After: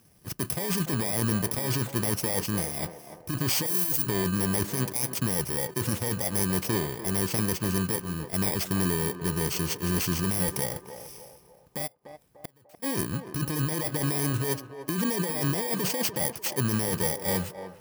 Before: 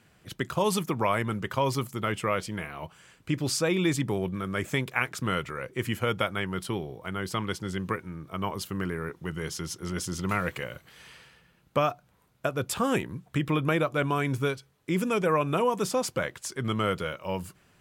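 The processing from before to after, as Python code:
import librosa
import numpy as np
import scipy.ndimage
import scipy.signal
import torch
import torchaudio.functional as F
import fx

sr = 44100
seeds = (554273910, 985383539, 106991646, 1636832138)

y = fx.bit_reversed(x, sr, seeds[0], block=32)
y = fx.pre_emphasis(y, sr, coefficient=0.8, at=(3.66, 4.07))
y = fx.over_compress(y, sr, threshold_db=-30.0, ratio=-1.0)
y = fx.leveller(y, sr, passes=1)
y = fx.gate_flip(y, sr, shuts_db=-23.0, range_db=-33, at=(11.86, 12.82), fade=0.02)
y = fx.echo_banded(y, sr, ms=295, feedback_pct=48, hz=650.0, wet_db=-8)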